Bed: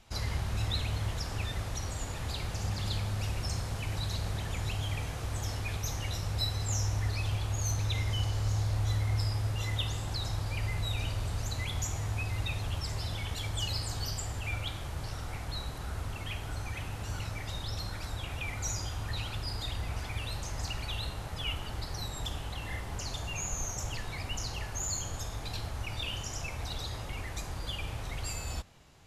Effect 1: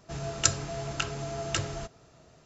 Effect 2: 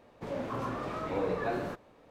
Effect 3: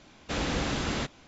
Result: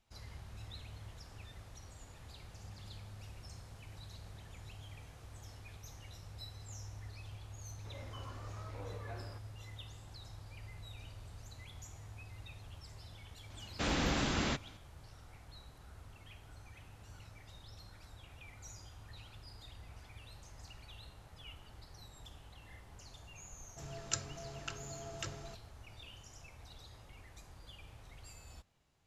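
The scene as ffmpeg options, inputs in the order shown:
-filter_complex "[0:a]volume=-17dB[a];[2:a]lowshelf=f=440:g=-9.5[b];[3:a]equalizer=f=470:t=o:w=0.42:g=-3[c];[b]atrim=end=2.1,asetpts=PTS-STARTPTS,volume=-13.5dB,afade=t=in:d=0.004:c=hsin,afade=t=out:st=2.096:d=0.004:c=hsin,adelay=7630[d];[c]atrim=end=1.27,asetpts=PTS-STARTPTS,volume=-3dB,afade=t=in:d=0.004:c=hsin,afade=t=out:st=1.266:d=0.004:c=hsin,adelay=13500[e];[1:a]atrim=end=2.45,asetpts=PTS-STARTPTS,volume=-12.5dB,afade=t=in:d=0.004:c=hsin,afade=t=out:st=2.446:d=0.004:c=hsin,adelay=23680[f];[a][d][e][f]amix=inputs=4:normalize=0"

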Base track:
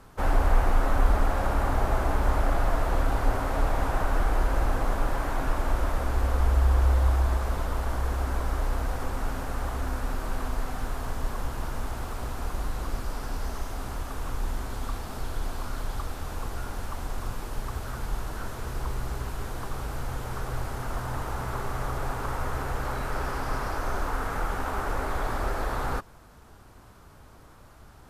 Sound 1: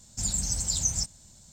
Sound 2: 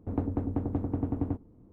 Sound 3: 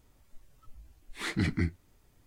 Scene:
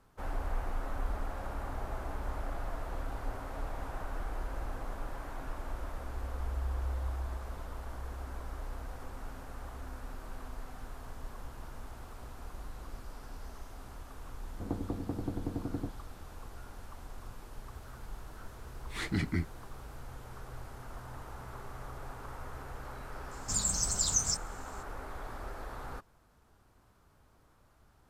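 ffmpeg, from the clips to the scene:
-filter_complex "[0:a]volume=-13.5dB[a];[2:a]aecho=1:1:5.9:0.31[b];[1:a]lowshelf=f=160:g=-5.5[c];[b]atrim=end=1.72,asetpts=PTS-STARTPTS,volume=-5.5dB,afade=t=in:d=0.004:c=hsin,afade=t=out:st=1.716:d=0.004:c=hsin,adelay=14530[d];[3:a]atrim=end=2.26,asetpts=PTS-STARTPTS,volume=-3dB,afade=t=in:d=0.004:c=hsin,afade=t=out:st=2.256:d=0.004:c=hsin,adelay=17750[e];[c]atrim=end=1.52,asetpts=PTS-STARTPTS,volume=-2dB,afade=t=in:d=0.004:c=hsin,afade=t=out:st=1.516:d=0.004:c=hsin,adelay=23310[f];[a][d][e][f]amix=inputs=4:normalize=0"

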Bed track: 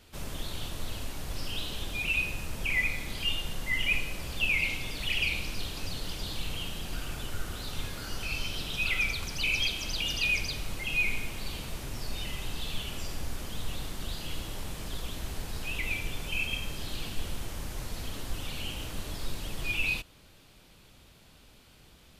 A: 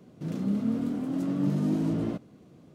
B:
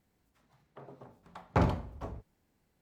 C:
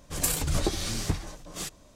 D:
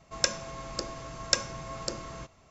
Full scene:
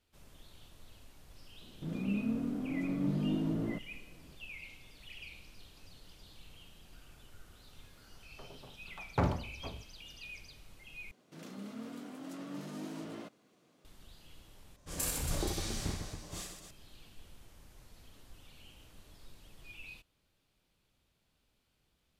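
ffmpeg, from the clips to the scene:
-filter_complex "[1:a]asplit=2[a][b];[0:a]volume=-20dB[c];[a]highshelf=f=5.1k:g=-10[d];[b]highpass=f=1.4k:p=1[e];[3:a]aecho=1:1:30|78|154.8|277.7|474.3:0.794|0.631|0.501|0.398|0.316[f];[c]asplit=3[g][h][i];[g]atrim=end=11.114[j];[e]atrim=end=2.74,asetpts=PTS-STARTPTS,volume=-1.5dB[k];[h]atrim=start=13.846:end=14.764[l];[f]atrim=end=1.95,asetpts=PTS-STARTPTS,volume=-11dB[m];[i]atrim=start=16.706[n];[d]atrim=end=2.74,asetpts=PTS-STARTPTS,volume=-6dB,afade=t=in:d=0.004:c=hsin,afade=t=out:st=2.736:d=0.004:c=hsin,adelay=1610[o];[2:a]atrim=end=2.81,asetpts=PTS-STARTPTS,volume=-3.5dB,afade=t=in:d=0.004:c=hsin,afade=t=out:st=2.806:d=0.004:c=hsin,adelay=336042S[p];[j][k]acrossfade=d=0.004:c1=hsin:c2=hsin[q];[q][l]acrossfade=d=0.004:c1=hsin:c2=hsin[r];[r][m]acrossfade=d=0.004:c1=hsin:c2=hsin[s];[s][n]acrossfade=d=0.004:c1=hsin:c2=hsin[t];[t][o][p]amix=inputs=3:normalize=0"

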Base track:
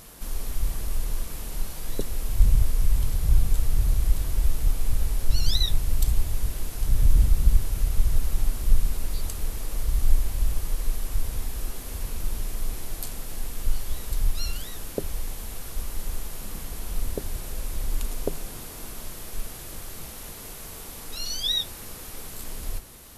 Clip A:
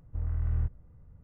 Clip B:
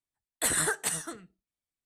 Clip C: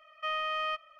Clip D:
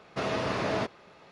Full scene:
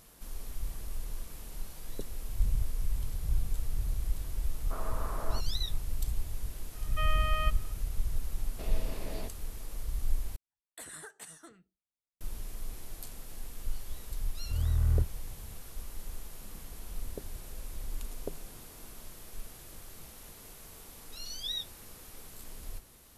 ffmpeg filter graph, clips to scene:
-filter_complex "[4:a]asplit=2[a][b];[0:a]volume=-10.5dB[c];[a]lowpass=f=1.2k:t=q:w=3[d];[b]equalizer=f=1.3k:w=1.3:g=-11[e];[2:a]acompressor=threshold=-33dB:ratio=3:attack=1.3:release=652:knee=1:detection=peak[f];[1:a]dynaudnorm=f=120:g=3:m=6dB[g];[c]asplit=2[h][i];[h]atrim=end=10.364[j];[f]atrim=end=1.85,asetpts=PTS-STARTPTS,volume=-9.5dB[k];[i]atrim=start=12.206[l];[d]atrim=end=1.31,asetpts=PTS-STARTPTS,volume=-15dB,afade=t=in:d=0.004:c=hsin,afade=t=out:st=1.306:d=0.004:c=hsin,adelay=4540[m];[3:a]atrim=end=0.99,asetpts=PTS-STARTPTS,volume=-2dB,afade=t=in:d=0.004:c=hsin,afade=t=out:st=0.986:d=0.004:c=hsin,adelay=297234S[n];[e]atrim=end=1.31,asetpts=PTS-STARTPTS,volume=-12dB,afade=t=in:d=0.004:c=hsin,afade=t=out:st=1.306:d=0.004:c=hsin,adelay=371322S[o];[g]atrim=end=1.23,asetpts=PTS-STARTPTS,volume=-3.5dB,afade=t=in:d=0.004:c=hsin,afade=t=out:st=1.226:d=0.004:c=hsin,adelay=14360[p];[j][k]acrossfade=d=0.004:c1=hsin:c2=hsin[q];[q][l]acrossfade=d=0.004:c1=hsin:c2=hsin[r];[r][m][n][o][p]amix=inputs=5:normalize=0"

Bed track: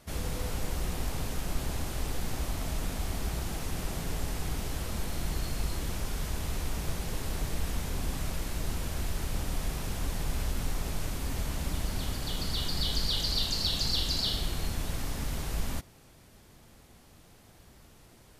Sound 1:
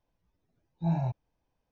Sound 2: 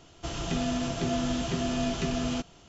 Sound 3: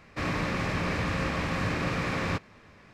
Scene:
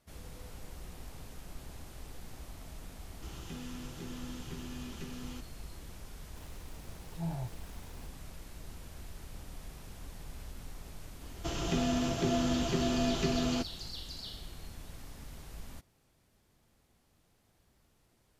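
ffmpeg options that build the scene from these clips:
-filter_complex "[2:a]asplit=2[a][b];[0:a]volume=-14dB[c];[a]asuperstop=centerf=650:order=4:qfactor=3[d];[1:a]aeval=exprs='val(0)+0.5*0.0106*sgn(val(0))':c=same[e];[b]equalizer=f=370:w=3:g=4.5[f];[d]atrim=end=2.68,asetpts=PTS-STARTPTS,volume=-14.5dB,afade=t=in:d=0.004:c=hsin,afade=t=out:st=2.676:d=0.004:c=hsin,adelay=2990[g];[e]atrim=end=1.71,asetpts=PTS-STARTPTS,volume=-9.5dB,afade=t=in:d=0.004:c=hsin,afade=t=out:st=1.706:d=0.004:c=hsin,adelay=6360[h];[f]atrim=end=2.68,asetpts=PTS-STARTPTS,volume=-2dB,afade=t=in:d=0.004:c=hsin,afade=t=out:st=2.676:d=0.004:c=hsin,adelay=11210[i];[c][g][h][i]amix=inputs=4:normalize=0"

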